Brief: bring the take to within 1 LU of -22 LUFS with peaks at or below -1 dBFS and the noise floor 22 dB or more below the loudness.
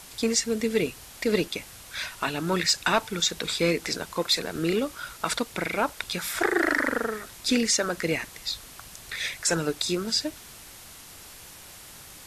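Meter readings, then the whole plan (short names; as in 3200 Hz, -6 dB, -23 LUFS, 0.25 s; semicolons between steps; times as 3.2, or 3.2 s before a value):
noise floor -46 dBFS; noise floor target -49 dBFS; loudness -27.0 LUFS; peak -11.5 dBFS; loudness target -22.0 LUFS
-> denoiser 6 dB, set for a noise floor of -46 dBFS; gain +5 dB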